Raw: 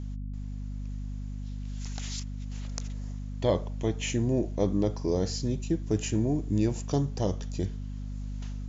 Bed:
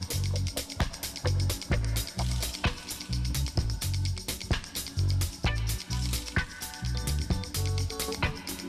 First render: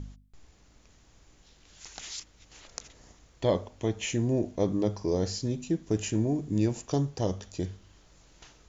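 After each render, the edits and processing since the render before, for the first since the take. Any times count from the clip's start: de-hum 50 Hz, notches 5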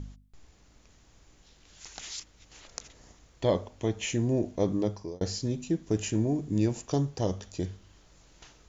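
4.67–5.21 fade out equal-power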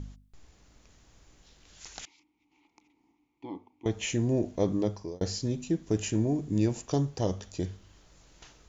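2.05–3.86 vowel filter u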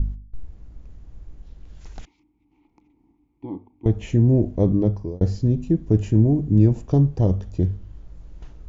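tilt -4.5 dB/oct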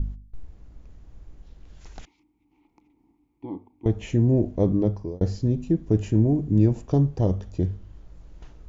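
low shelf 240 Hz -5 dB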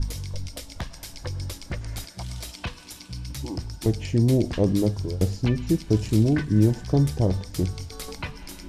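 add bed -4.5 dB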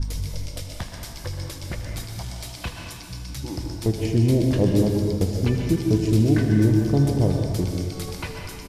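echo 79 ms -14 dB; plate-style reverb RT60 1.8 s, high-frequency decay 0.75×, pre-delay 0.11 s, DRR 2.5 dB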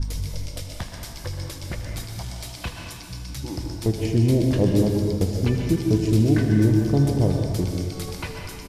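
nothing audible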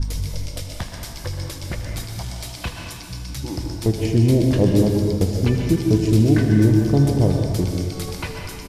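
gain +3 dB

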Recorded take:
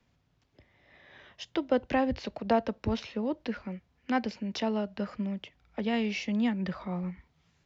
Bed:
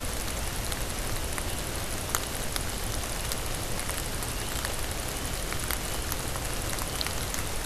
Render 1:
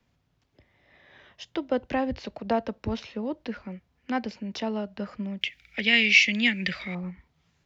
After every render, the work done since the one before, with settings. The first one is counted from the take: 5.41–6.95 resonant high shelf 1500 Hz +13 dB, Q 3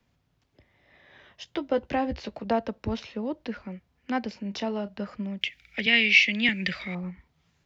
1.44–2.45 doubler 14 ms -8.5 dB; 4.31–4.9 doubler 30 ms -13 dB; 5.86–6.49 three-band isolator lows -12 dB, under 160 Hz, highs -16 dB, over 5400 Hz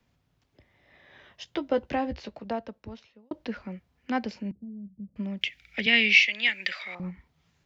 1.73–3.31 fade out; 4.51–5.16 ladder low-pass 230 Hz, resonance 35%; 6.26–7 HPF 640 Hz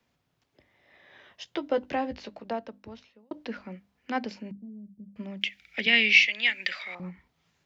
low shelf 110 Hz -12 dB; notches 50/100/150/200/250/300 Hz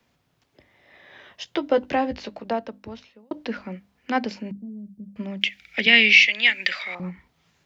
gain +6.5 dB; limiter -2 dBFS, peak gain reduction 3 dB

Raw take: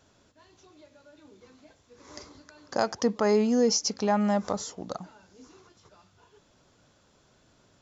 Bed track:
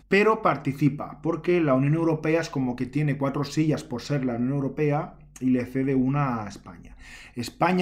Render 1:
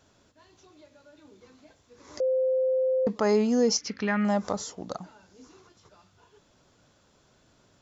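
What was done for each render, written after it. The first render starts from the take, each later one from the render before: 2.2–3.07 bleep 519 Hz -21.5 dBFS; 3.77–4.25 EQ curve 300 Hz 0 dB, 790 Hz -10 dB, 1300 Hz +3 dB, 1900 Hz +11 dB, 7600 Hz -15 dB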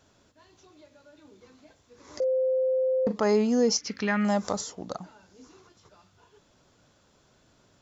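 2.18–3.24 doubler 38 ms -10 dB; 3.9–4.61 high shelf 5000 Hz +10.5 dB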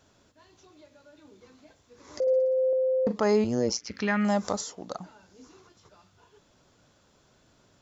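2.21–2.73 flutter echo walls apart 10.3 m, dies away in 1.1 s; 3.44–3.94 AM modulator 120 Hz, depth 85%; 4.56–4.98 low shelf 200 Hz -8 dB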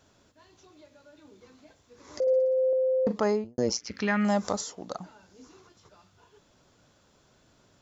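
3.17–3.58 studio fade out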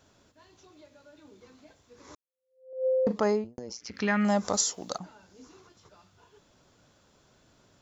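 2.15–2.86 fade in exponential; 3.56–3.99 compressor 12:1, threshold -35 dBFS; 4.53–4.98 high shelf 3000 Hz +12 dB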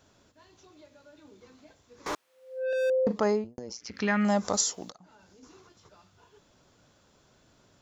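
2.06–2.9 overdrive pedal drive 40 dB, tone 1700 Hz, clips at -21.5 dBFS; 4.9–5.43 compressor 4:1, threshold -53 dBFS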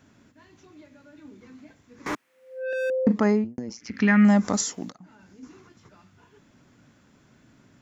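graphic EQ 125/250/500/2000/4000 Hz +6/+11/-3/+8/-4 dB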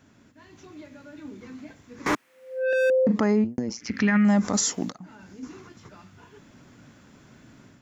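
AGC gain up to 6 dB; limiter -14 dBFS, peak gain reduction 10 dB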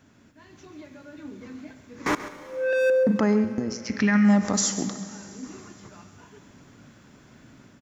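echo 0.135 s -13.5 dB; Schroeder reverb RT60 3.5 s, combs from 31 ms, DRR 12 dB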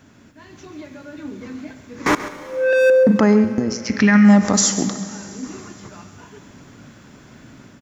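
gain +7.5 dB

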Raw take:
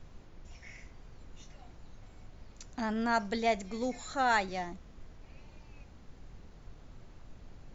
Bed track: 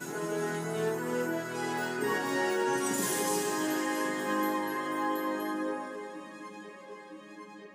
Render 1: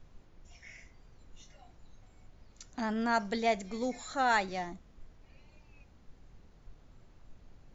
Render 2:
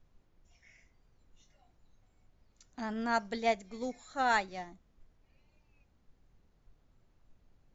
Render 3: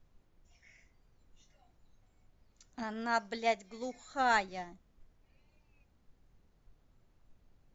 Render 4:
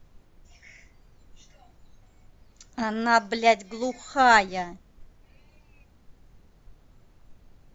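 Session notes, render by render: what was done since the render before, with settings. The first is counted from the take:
noise print and reduce 6 dB
upward expander 1.5:1, over -45 dBFS
2.83–3.94 low shelf 290 Hz -7.5 dB
gain +11.5 dB

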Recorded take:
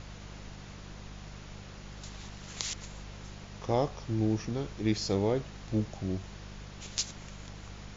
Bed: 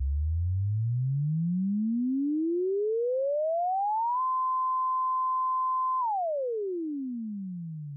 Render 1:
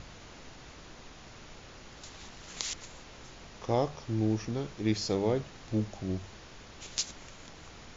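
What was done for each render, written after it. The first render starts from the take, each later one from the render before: de-hum 50 Hz, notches 4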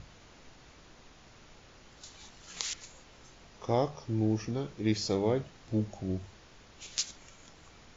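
noise print and reduce 6 dB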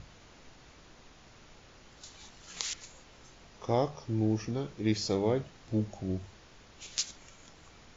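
nothing audible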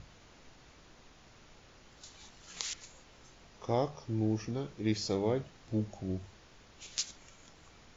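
gain -2.5 dB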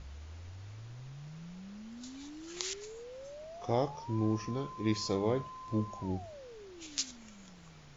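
add bed -19.5 dB

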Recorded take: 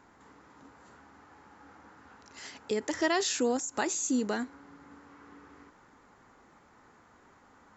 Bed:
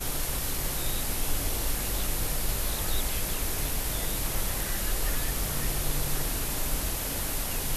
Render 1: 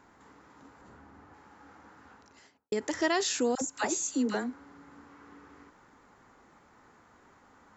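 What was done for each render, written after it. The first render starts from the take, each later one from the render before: 0.81–1.34 tilt -2 dB/oct; 2.05–2.72 studio fade out; 3.55–5.04 dispersion lows, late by 67 ms, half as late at 740 Hz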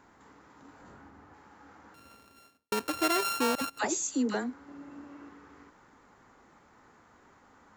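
0.66–1.09 doubler 21 ms -3 dB; 1.94–3.79 sample sorter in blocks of 32 samples; 4.68–5.29 small resonant body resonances 310/590/2700 Hz, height 12 dB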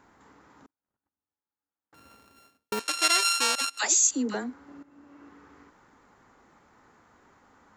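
0.66–1.93 gate -48 dBFS, range -44 dB; 2.79–4.11 weighting filter ITU-R 468; 4.83–5.4 fade in, from -13.5 dB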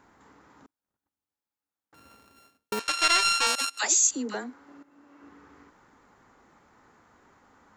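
2.79–3.47 overdrive pedal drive 9 dB, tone 3900 Hz, clips at -5 dBFS; 4.16–5.23 low shelf 190 Hz -11.5 dB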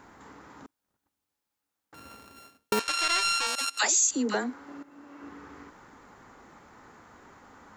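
in parallel at +1.5 dB: compressor, threshold -32 dBFS, peak gain reduction 14.5 dB; on the sum: limiter -14 dBFS, peak gain reduction 8.5 dB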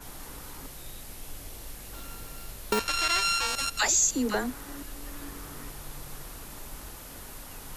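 add bed -13 dB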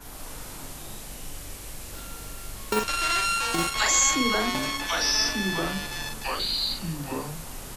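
echoes that change speed 0.113 s, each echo -4 st, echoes 2; doubler 42 ms -4.5 dB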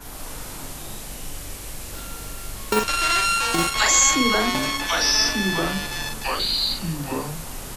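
gain +4.5 dB

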